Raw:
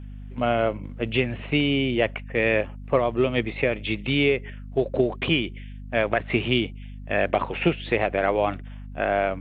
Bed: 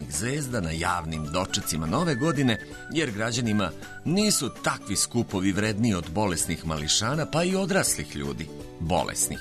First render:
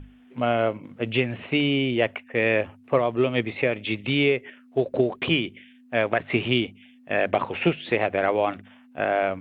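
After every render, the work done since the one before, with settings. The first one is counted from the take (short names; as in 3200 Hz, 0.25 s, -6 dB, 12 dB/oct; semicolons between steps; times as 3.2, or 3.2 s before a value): notches 50/100/150/200 Hz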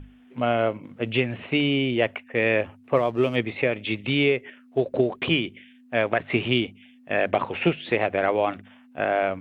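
2.96–3.36 backlash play -43 dBFS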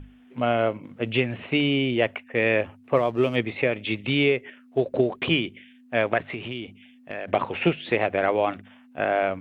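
6.23–7.28 compressor 3:1, threshold -32 dBFS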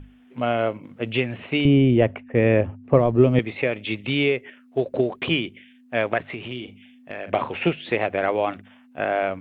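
1.65–3.39 tilt -4 dB/oct; 6.45–7.54 doubler 40 ms -10 dB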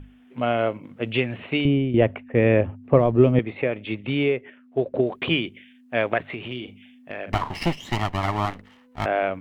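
1.5–1.94 fade out, to -10.5 dB; 3.31–5.07 high shelf 2900 Hz -11.5 dB; 7.32–9.06 minimum comb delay 1 ms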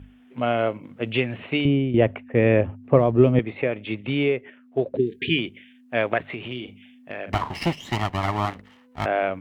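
4.96–5.38 spectral delete 460–1600 Hz; HPF 41 Hz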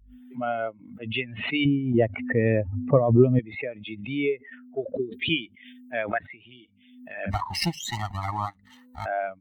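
per-bin expansion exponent 2; backwards sustainer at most 66 dB/s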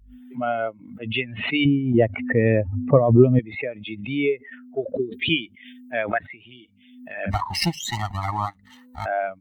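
gain +3.5 dB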